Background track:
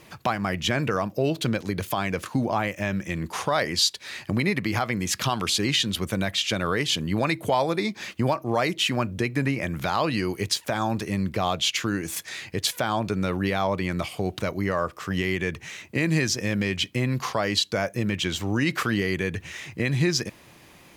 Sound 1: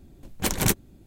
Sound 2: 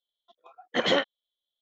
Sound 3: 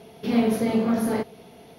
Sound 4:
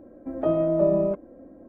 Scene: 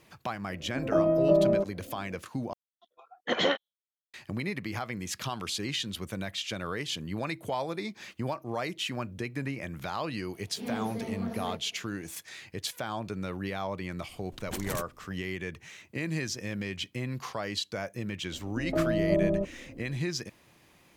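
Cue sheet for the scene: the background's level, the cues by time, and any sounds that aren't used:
background track -9.5 dB
0.49 s: add 4 -1.5 dB
2.53 s: replace with 2 -2.5 dB + gate with hold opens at -54 dBFS, closes at -64 dBFS
10.34 s: add 3 -13.5 dB
14.09 s: add 1 -8.5 dB + peak limiter -15 dBFS
18.30 s: add 4 -9 dB + tilt EQ -3.5 dB/octave

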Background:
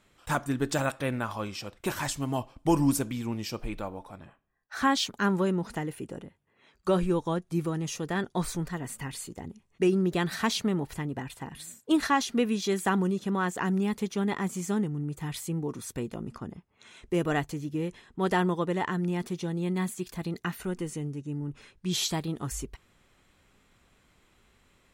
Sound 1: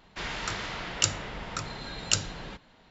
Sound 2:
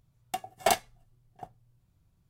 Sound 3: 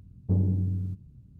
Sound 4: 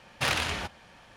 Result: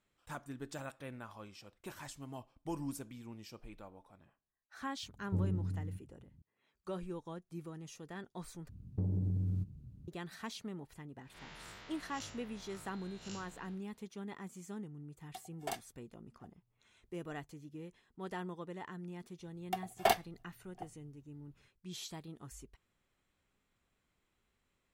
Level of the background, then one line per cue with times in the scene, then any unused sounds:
background -16.5 dB
5.03 s: add 3 -10 dB
8.69 s: replace with 3 -1.5 dB + compression 10:1, threshold -28 dBFS
11.18 s: add 1 -16.5 dB + spectral blur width 125 ms
15.01 s: add 2 -16 dB
19.39 s: add 2 -3.5 dB + peaking EQ 7.8 kHz -9 dB 1 oct
not used: 4

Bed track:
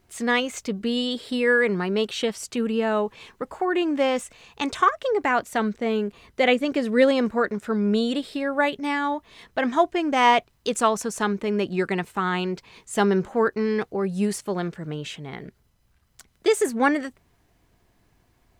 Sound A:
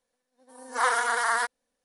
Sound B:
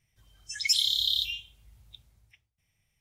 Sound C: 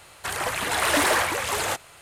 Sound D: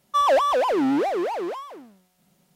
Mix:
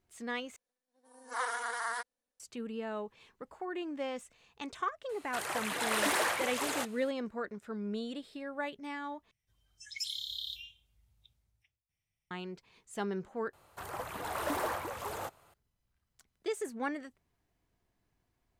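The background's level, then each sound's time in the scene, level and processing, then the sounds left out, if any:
bed track -15.5 dB
0.56 s: replace with A -11 dB
5.09 s: add C -9 dB + high-pass 160 Hz
9.31 s: replace with B -13.5 dB
13.53 s: replace with C -10.5 dB + high-order bell 4.2 kHz -9.5 dB 3 oct
not used: D

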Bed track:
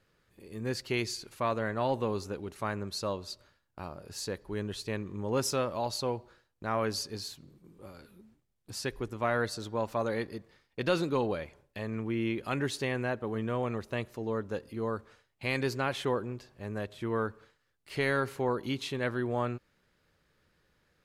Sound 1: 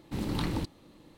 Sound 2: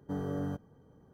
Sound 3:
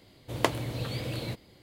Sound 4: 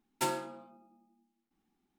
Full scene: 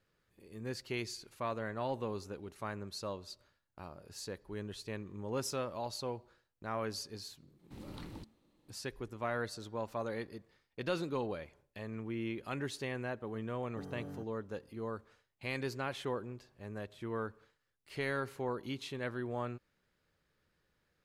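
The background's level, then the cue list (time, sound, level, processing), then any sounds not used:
bed track -7 dB
7.59 s: add 1 -16 dB
13.67 s: add 2 -11 dB + high-pass 49 Hz
not used: 3, 4

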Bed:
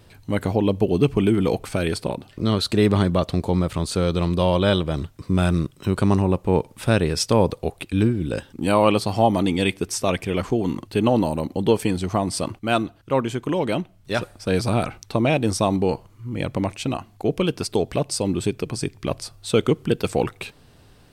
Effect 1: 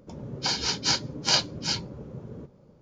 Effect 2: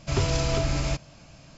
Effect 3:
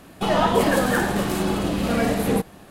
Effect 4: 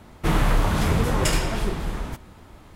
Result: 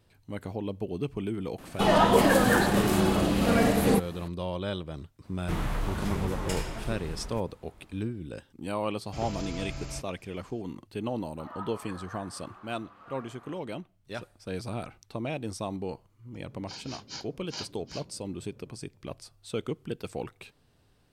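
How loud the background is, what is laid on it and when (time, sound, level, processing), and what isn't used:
bed -14 dB
1.58 s: add 3 -1.5 dB
5.24 s: add 4 -11 dB
9.05 s: add 2 -12.5 dB
11.17 s: add 3 -13.5 dB + band-pass filter 1.2 kHz, Q 4.9
16.25 s: add 1 -16.5 dB

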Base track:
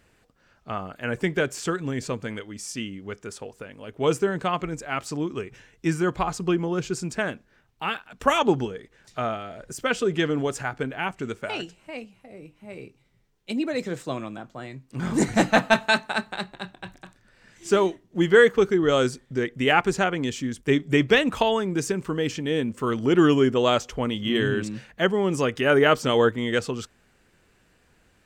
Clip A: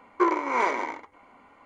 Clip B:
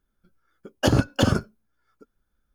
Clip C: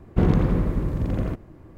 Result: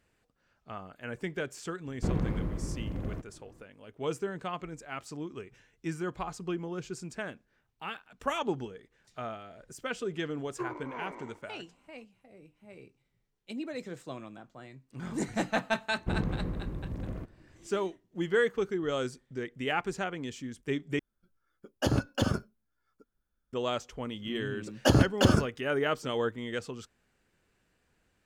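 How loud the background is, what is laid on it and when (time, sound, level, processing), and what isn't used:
base track -11 dB
1.86 s: add C -11 dB
10.39 s: add A -17.5 dB + tilt EQ -3 dB/octave
15.90 s: add C -12.5 dB
20.99 s: replace with B -8 dB
24.02 s: add B -2.5 dB

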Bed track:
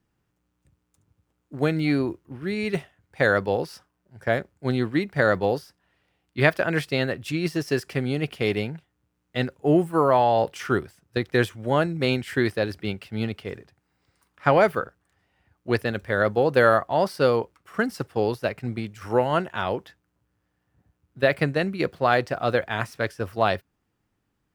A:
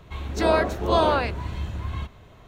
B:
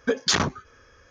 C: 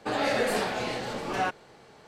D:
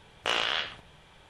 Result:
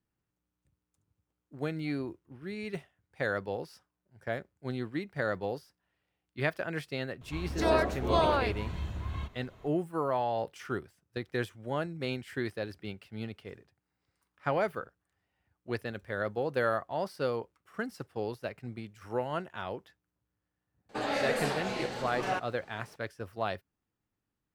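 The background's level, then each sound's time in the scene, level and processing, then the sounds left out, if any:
bed track -11.5 dB
7.21 s: add A -6 dB
20.89 s: add C -4.5 dB
not used: B, D

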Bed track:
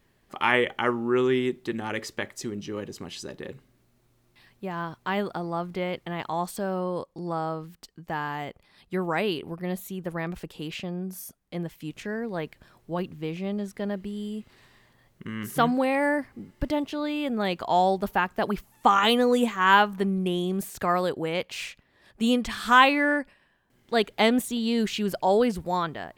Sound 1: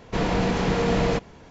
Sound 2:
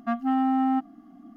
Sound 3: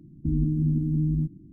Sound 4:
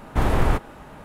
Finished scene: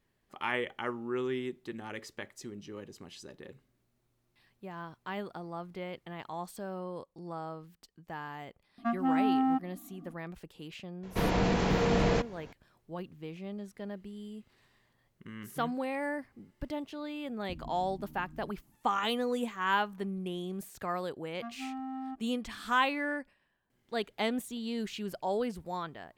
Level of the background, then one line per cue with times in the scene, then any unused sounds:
bed track -10.5 dB
8.78 s: add 2 -4 dB
11.03 s: add 1 -4.5 dB
17.24 s: add 3 -13 dB + harmonic-percussive split harmonic -17 dB
21.35 s: add 2 -16 dB
not used: 4

